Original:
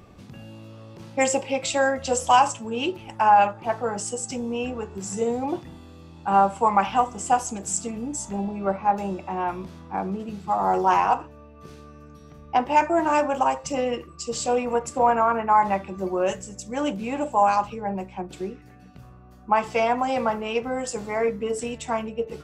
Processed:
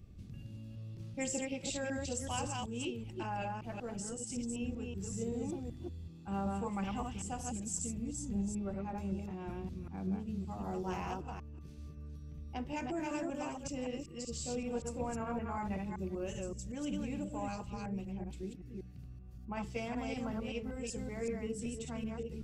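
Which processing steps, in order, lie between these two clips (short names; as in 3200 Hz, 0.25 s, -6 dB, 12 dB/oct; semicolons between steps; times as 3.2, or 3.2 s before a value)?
reverse delay 0.19 s, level -2.5 dB; passive tone stack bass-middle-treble 10-0-1; gain +8 dB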